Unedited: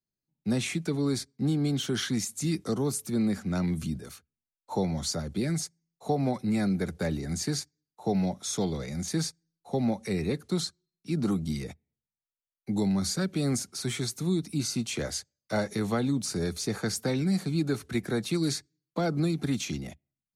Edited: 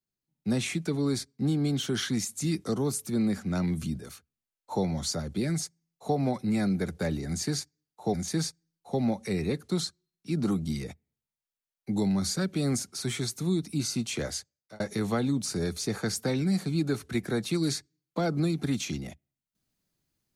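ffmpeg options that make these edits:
ffmpeg -i in.wav -filter_complex "[0:a]asplit=3[link_01][link_02][link_03];[link_01]atrim=end=8.142[link_04];[link_02]atrim=start=8.938:end=15.6,asetpts=PTS-STARTPTS,afade=type=out:start_time=6.032:duration=0.63:curve=qsin[link_05];[link_03]atrim=start=15.6,asetpts=PTS-STARTPTS,afade=type=in:duration=0.004:curve=hsin[link_06];[link_05][link_06]concat=n=2:v=0:a=1[link_07];[link_04][link_07]acrossfade=duration=0.004:curve1=hsin:curve2=hsin" out.wav

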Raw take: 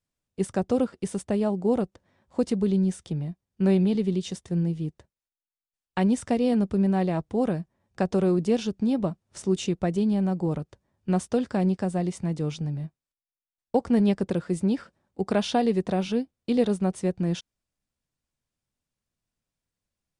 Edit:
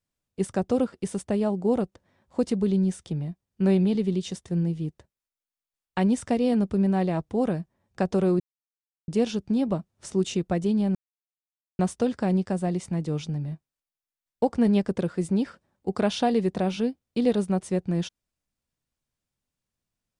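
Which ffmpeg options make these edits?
ffmpeg -i in.wav -filter_complex "[0:a]asplit=4[link_01][link_02][link_03][link_04];[link_01]atrim=end=8.4,asetpts=PTS-STARTPTS,afade=type=out:start_time=8.396:duration=0.004:curve=hsin,apad=pad_dur=0.68[link_05];[link_02]atrim=start=8.4:end=10.27,asetpts=PTS-STARTPTS,afade=type=in:duration=0.004:curve=hsin,afade=type=out:start_time=1.866:duration=0.004:curve=hsin[link_06];[link_03]atrim=start=10.27:end=11.11,asetpts=PTS-STARTPTS,volume=0[link_07];[link_04]atrim=start=11.11,asetpts=PTS-STARTPTS,afade=type=in:duration=0.004:curve=hsin[link_08];[link_05][link_06][link_07][link_08]concat=n=4:v=0:a=1" out.wav

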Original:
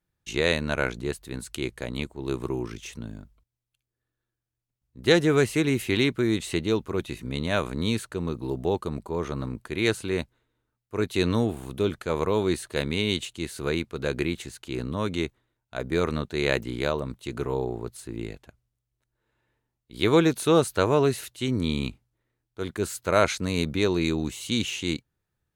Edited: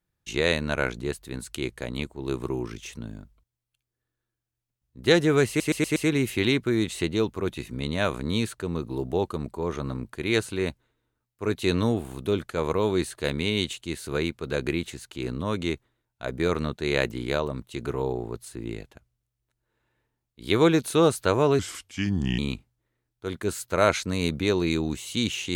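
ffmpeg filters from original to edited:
ffmpeg -i in.wav -filter_complex "[0:a]asplit=7[link_01][link_02][link_03][link_04][link_05][link_06][link_07];[link_01]atrim=end=5.602[link_08];[link_02]atrim=start=5.478:end=5.602[link_09];[link_03]atrim=start=5.478:end=5.602[link_10];[link_04]atrim=start=5.478:end=5.602[link_11];[link_05]atrim=start=5.478:end=21.114[link_12];[link_06]atrim=start=21.11:end=21.73,asetpts=PTS-STARTPTS,asetrate=34398,aresample=44100[link_13];[link_07]atrim=start=21.726[link_14];[link_08][link_09]acrossfade=duration=0.004:curve1=hsin:curve2=hsin[link_15];[link_15][link_10]acrossfade=duration=0.004:curve1=hsin:curve2=hsin[link_16];[link_16][link_11]acrossfade=duration=0.004:curve1=hsin:curve2=hsin[link_17];[link_17][link_12]acrossfade=duration=0.004:curve1=hsin:curve2=hsin[link_18];[link_18][link_13]acrossfade=duration=0.004:curve1=hsin:curve2=hsin[link_19];[link_19][link_14]acrossfade=duration=0.004:curve1=hsin:curve2=hsin" out.wav

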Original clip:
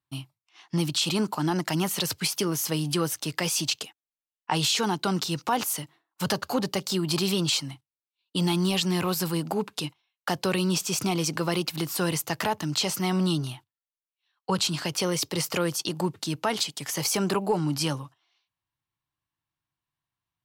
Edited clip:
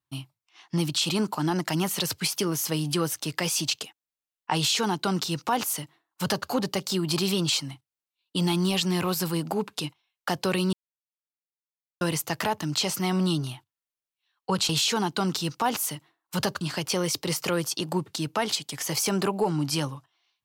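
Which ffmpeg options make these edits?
ffmpeg -i in.wav -filter_complex "[0:a]asplit=5[link_01][link_02][link_03][link_04][link_05];[link_01]atrim=end=10.73,asetpts=PTS-STARTPTS,afade=type=out:start_time=10.726:duration=0.004:curve=hsin[link_06];[link_02]atrim=start=10.73:end=12.01,asetpts=PTS-STARTPTS,volume=0[link_07];[link_03]atrim=start=12.01:end=14.692,asetpts=PTS-STARTPTS,afade=type=in:duration=0.004:curve=hsin[link_08];[link_04]atrim=start=4.558:end=6.482[link_09];[link_05]atrim=start=14.688[link_10];[link_06][link_07][link_08]concat=n=3:v=0:a=1[link_11];[link_11][link_09]acrossfade=duration=0.004:curve1=hsin:curve2=hsin[link_12];[link_12][link_10]acrossfade=duration=0.004:curve1=hsin:curve2=hsin" out.wav

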